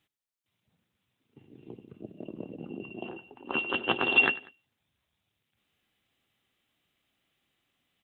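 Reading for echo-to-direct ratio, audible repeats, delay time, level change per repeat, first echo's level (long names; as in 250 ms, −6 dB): −20.0 dB, 2, 96 ms, −5.5 dB, −21.0 dB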